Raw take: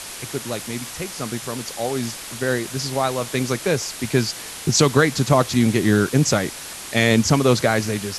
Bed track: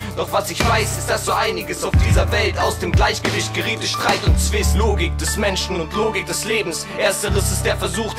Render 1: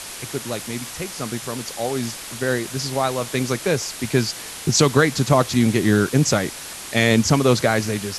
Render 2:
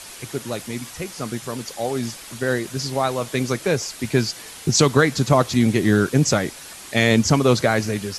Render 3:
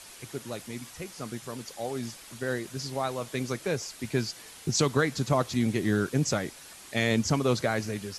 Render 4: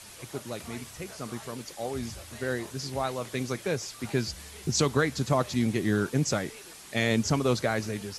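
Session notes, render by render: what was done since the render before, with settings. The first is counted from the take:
no processing that can be heard
broadband denoise 6 dB, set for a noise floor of −35 dBFS
level −9 dB
mix in bed track −30.5 dB

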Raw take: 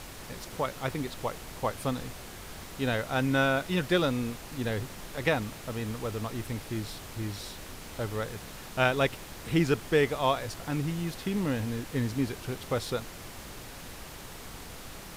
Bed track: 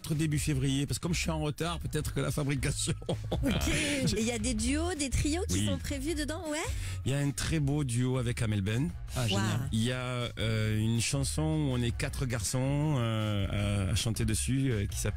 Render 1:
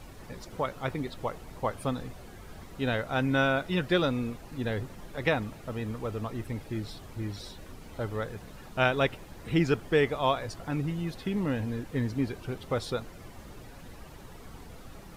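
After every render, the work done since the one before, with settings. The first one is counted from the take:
broadband denoise 11 dB, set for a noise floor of −44 dBFS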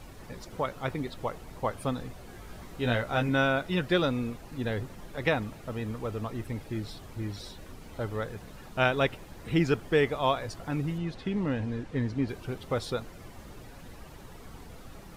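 0:02.27–0:03.29: double-tracking delay 17 ms −4.5 dB
0:10.98–0:12.29: high-frequency loss of the air 66 metres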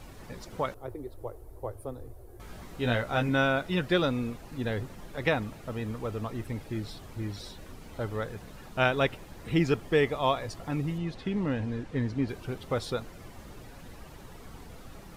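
0:00.74–0:02.40: drawn EQ curve 110 Hz 0 dB, 170 Hz −26 dB, 360 Hz 0 dB, 2,700 Hz −23 dB, 7,100 Hz −15 dB, 11,000 Hz −3 dB
0:09.52–0:11.18: notch filter 1,500 Hz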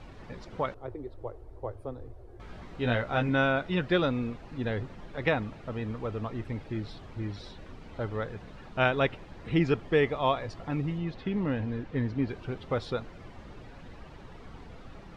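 low-pass filter 3,800 Hz 12 dB per octave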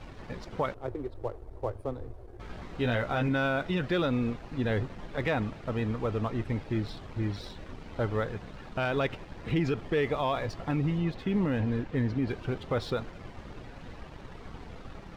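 leveller curve on the samples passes 1
brickwall limiter −20 dBFS, peak gain reduction 9.5 dB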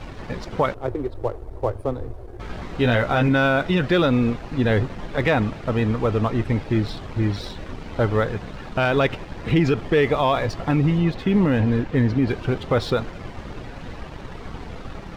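level +9.5 dB

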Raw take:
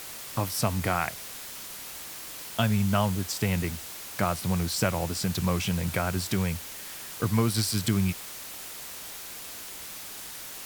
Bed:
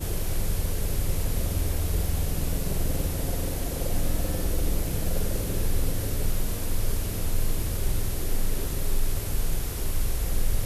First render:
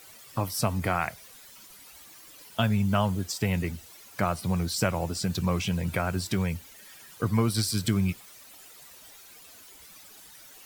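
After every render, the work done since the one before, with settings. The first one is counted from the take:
broadband denoise 13 dB, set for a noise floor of −41 dBFS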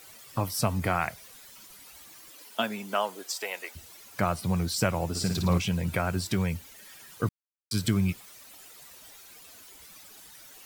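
0:02.29–0:03.75: high-pass filter 190 Hz → 590 Hz 24 dB per octave
0:05.09–0:05.58: flutter between parallel walls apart 9.6 metres, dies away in 0.61 s
0:07.29–0:07.71: silence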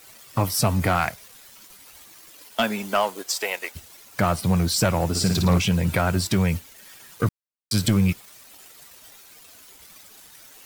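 leveller curve on the samples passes 2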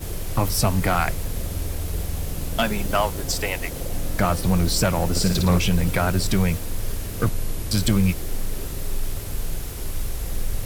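mix in bed −1 dB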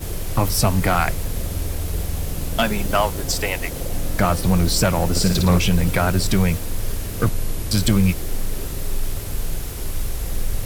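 level +2.5 dB

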